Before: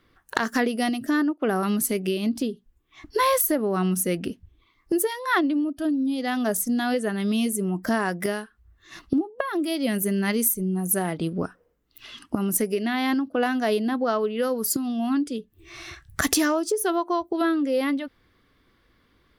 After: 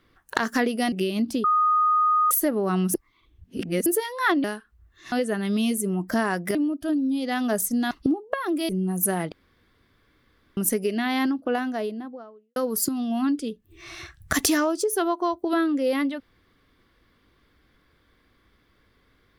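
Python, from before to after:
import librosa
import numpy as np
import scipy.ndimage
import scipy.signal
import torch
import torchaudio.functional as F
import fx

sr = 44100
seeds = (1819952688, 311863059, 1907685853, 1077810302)

y = fx.studio_fade_out(x, sr, start_s=13.05, length_s=1.39)
y = fx.edit(y, sr, fx.cut(start_s=0.92, length_s=1.07),
    fx.bleep(start_s=2.51, length_s=0.87, hz=1240.0, db=-17.0),
    fx.reverse_span(start_s=4.01, length_s=0.92),
    fx.swap(start_s=5.51, length_s=1.36, other_s=8.3, other_length_s=0.68),
    fx.cut(start_s=9.76, length_s=0.81),
    fx.room_tone_fill(start_s=11.2, length_s=1.25), tone=tone)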